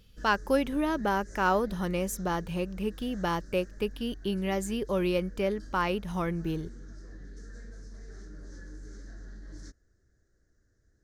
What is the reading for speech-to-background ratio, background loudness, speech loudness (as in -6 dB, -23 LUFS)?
17.5 dB, -48.0 LUFS, -30.5 LUFS